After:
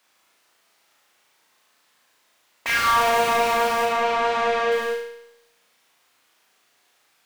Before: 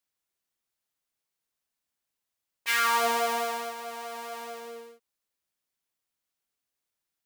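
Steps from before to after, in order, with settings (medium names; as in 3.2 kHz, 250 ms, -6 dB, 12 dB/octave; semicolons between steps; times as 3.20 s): overdrive pedal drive 36 dB, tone 2.2 kHz, clips at -12 dBFS; 3.85–4.72 s: low-pass 4.9 kHz 12 dB/octave; on a send: flutter echo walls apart 6.2 m, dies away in 0.81 s; on the sum: trim -2.5 dB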